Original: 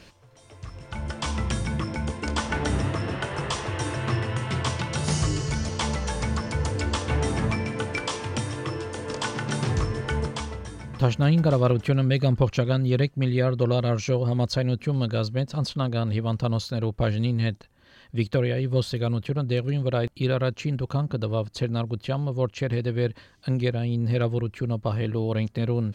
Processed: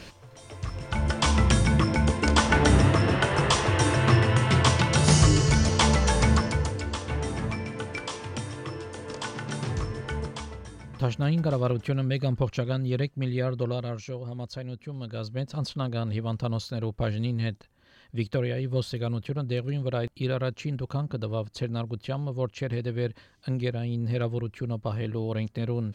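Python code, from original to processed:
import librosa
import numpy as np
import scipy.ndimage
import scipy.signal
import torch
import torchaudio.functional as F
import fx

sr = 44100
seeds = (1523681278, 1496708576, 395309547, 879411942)

y = fx.gain(x, sr, db=fx.line((6.35, 6.0), (6.81, -5.0), (13.58, -5.0), (14.12, -12.0), (14.99, -12.0), (15.47, -4.0)))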